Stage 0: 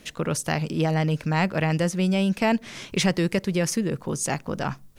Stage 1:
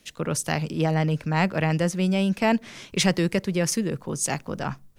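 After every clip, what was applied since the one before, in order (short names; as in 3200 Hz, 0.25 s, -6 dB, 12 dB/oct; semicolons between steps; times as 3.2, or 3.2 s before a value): three-band expander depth 40%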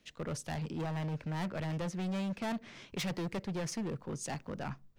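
bell 12000 Hz -14.5 dB 1.3 oct; hard clip -25 dBFS, distortion -6 dB; gain -8 dB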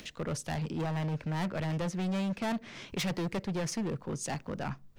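upward compressor, threshold -42 dBFS; gain +3.5 dB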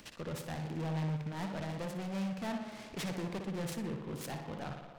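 tape echo 60 ms, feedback 90%, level -4 dB, low-pass 2800 Hz; noise-modulated delay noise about 1800 Hz, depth 0.047 ms; gain -6.5 dB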